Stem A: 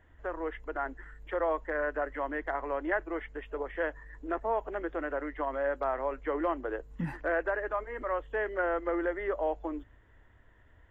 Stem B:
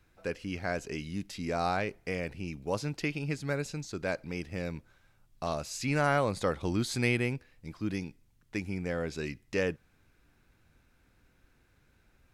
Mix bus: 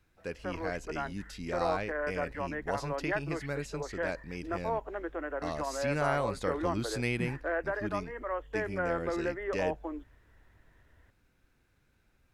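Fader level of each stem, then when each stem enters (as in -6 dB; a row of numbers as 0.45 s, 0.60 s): -2.5 dB, -4.0 dB; 0.20 s, 0.00 s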